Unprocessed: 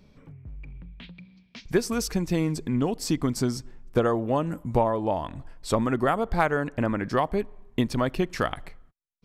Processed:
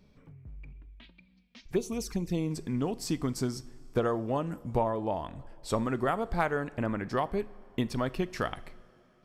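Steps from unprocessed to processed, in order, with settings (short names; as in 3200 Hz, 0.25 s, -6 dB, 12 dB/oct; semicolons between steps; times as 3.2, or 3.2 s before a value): two-slope reverb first 0.42 s, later 4 s, from -17 dB, DRR 15 dB; 0.72–2.51 envelope flanger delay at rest 4.5 ms, full sweep at -22 dBFS; gain -5.5 dB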